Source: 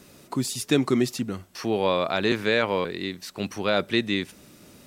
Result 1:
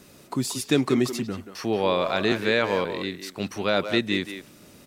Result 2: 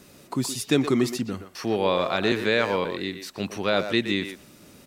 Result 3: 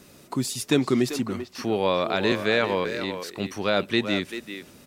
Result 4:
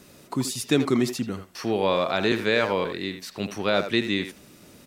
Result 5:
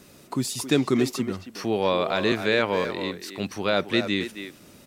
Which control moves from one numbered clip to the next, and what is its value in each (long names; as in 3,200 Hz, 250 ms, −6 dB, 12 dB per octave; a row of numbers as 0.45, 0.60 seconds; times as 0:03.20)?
far-end echo of a speakerphone, delay time: 180, 120, 390, 80, 270 milliseconds